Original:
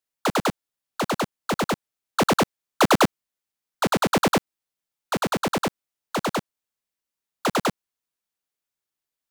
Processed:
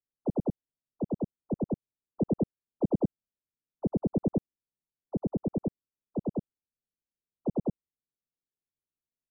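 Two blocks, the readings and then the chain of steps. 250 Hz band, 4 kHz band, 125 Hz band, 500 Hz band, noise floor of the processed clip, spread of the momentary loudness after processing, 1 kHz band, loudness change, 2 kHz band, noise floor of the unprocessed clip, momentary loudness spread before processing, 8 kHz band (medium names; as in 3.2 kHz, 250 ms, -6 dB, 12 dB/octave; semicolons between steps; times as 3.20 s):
-4.0 dB, under -40 dB, -3.0 dB, -9.0 dB, under -85 dBFS, 7 LU, -23.5 dB, -9.0 dB, under -40 dB, under -85 dBFS, 10 LU, under -40 dB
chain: saturation -18 dBFS, distortion -17 dB; Gaussian low-pass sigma 18 samples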